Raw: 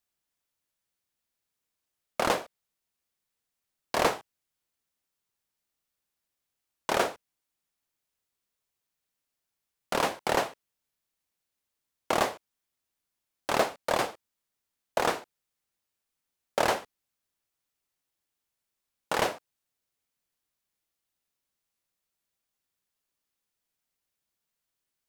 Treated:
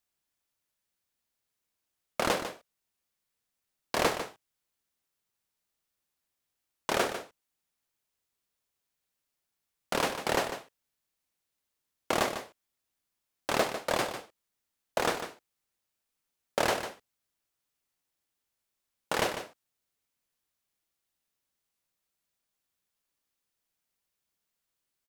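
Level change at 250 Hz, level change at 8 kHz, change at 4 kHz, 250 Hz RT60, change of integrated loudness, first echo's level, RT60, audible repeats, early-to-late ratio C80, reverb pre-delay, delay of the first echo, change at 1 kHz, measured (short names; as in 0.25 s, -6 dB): 0.0 dB, +0.5 dB, 0.0 dB, none, -2.0 dB, -10.0 dB, none, 1, none, none, 0.149 s, -3.0 dB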